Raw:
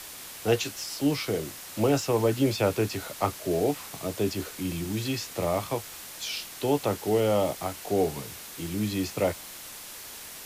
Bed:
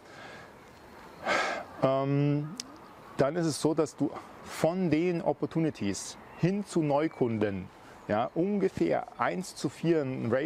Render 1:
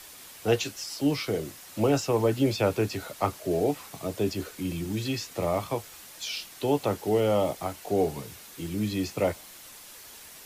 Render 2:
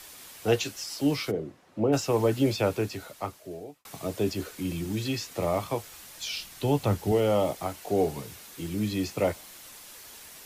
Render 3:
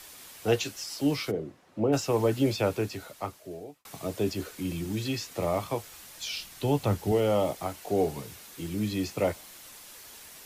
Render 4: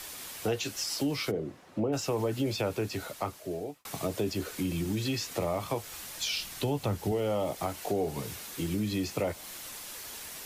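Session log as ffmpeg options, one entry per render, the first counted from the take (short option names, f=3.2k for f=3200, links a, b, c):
-af "afftdn=nr=6:nf=-43"
-filter_complex "[0:a]asplit=3[a][b][c];[a]afade=t=out:st=1.3:d=0.02[d];[b]bandpass=f=280:t=q:w=0.5,afade=t=in:st=1.3:d=0.02,afade=t=out:st=1.92:d=0.02[e];[c]afade=t=in:st=1.92:d=0.02[f];[d][e][f]amix=inputs=3:normalize=0,asettb=1/sr,asplit=3[g][h][i];[g]atrim=end=5.824[j];[h]atrim=start=5.82:end=7.12,asetpts=PTS-STARTPTS,afade=t=in:d=0.004:c=qsin,afade=t=out:st=1.296:d=0.004:c=qsin,asubboost=boost=8.5:cutoff=190[k];[i]atrim=start=7.116[l];[j][k]acrossfade=d=0.004:c1=hsin:c2=qsin[m];[m][l]acrossfade=d=0.004:c1=qsin:c2=hsin,asplit=2[n][o];[n]atrim=end=3.85,asetpts=PTS-STARTPTS,afade=t=out:st=2.5:d=1.35[p];[o]atrim=start=3.85,asetpts=PTS-STARTPTS,afade=t=in:d=0.004:c=hsin[q];[p][q]concat=n=2:v=0:a=1"
-af "volume=-1dB"
-filter_complex "[0:a]asplit=2[a][b];[b]alimiter=limit=-22.5dB:level=0:latency=1:release=27,volume=-1.5dB[c];[a][c]amix=inputs=2:normalize=0,acompressor=threshold=-29dB:ratio=3"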